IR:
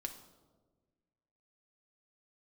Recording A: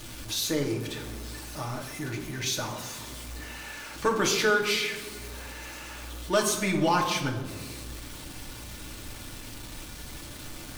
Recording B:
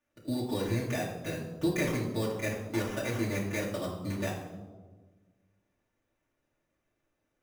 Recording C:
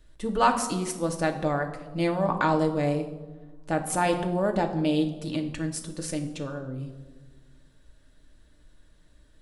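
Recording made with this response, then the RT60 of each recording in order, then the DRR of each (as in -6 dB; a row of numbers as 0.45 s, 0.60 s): C; 1.4 s, 1.4 s, 1.4 s; -0.5 dB, -7.5 dB, 3.5 dB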